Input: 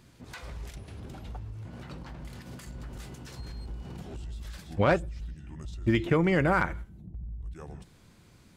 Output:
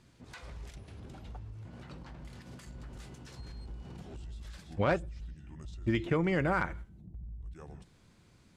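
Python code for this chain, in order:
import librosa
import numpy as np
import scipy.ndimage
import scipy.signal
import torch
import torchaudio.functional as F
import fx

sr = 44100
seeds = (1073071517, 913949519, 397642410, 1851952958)

y = scipy.signal.sosfilt(scipy.signal.butter(2, 10000.0, 'lowpass', fs=sr, output='sos'), x)
y = y * librosa.db_to_amplitude(-5.0)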